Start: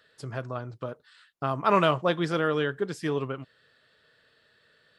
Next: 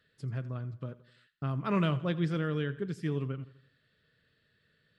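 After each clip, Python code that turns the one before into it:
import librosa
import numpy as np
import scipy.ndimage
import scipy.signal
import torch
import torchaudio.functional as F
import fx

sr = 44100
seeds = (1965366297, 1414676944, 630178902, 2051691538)

y = fx.curve_eq(x, sr, hz=(170.0, 820.0, 2100.0, 5900.0), db=(0, -18, -9, -14))
y = fx.echo_feedback(y, sr, ms=84, feedback_pct=51, wet_db=-18)
y = y * librosa.db_to_amplitude(2.0)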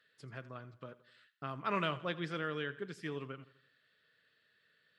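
y = fx.highpass(x, sr, hz=1000.0, slope=6)
y = fx.high_shelf(y, sr, hz=4700.0, db=-7.5)
y = y * librosa.db_to_amplitude(3.0)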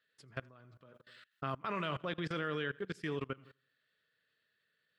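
y = fx.level_steps(x, sr, step_db=22)
y = y * librosa.db_to_amplitude(7.5)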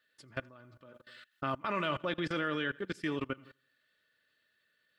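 y = x + 0.39 * np.pad(x, (int(3.4 * sr / 1000.0), 0))[:len(x)]
y = y * librosa.db_to_amplitude(3.5)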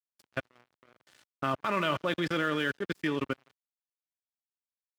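y = np.sign(x) * np.maximum(np.abs(x) - 10.0 ** (-50.5 / 20.0), 0.0)
y = scipy.signal.sosfilt(scipy.signal.butter(2, 79.0, 'highpass', fs=sr, output='sos'), y)
y = y * librosa.db_to_amplitude(5.0)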